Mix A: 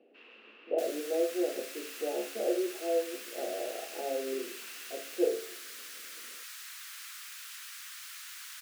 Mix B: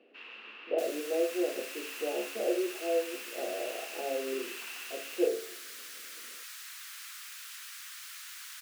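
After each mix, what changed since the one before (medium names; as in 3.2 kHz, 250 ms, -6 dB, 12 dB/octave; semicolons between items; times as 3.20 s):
first sound +8.0 dB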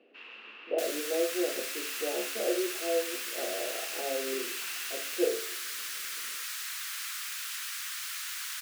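second sound +8.0 dB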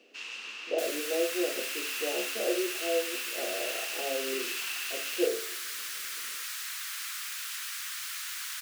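first sound: remove distance through air 460 m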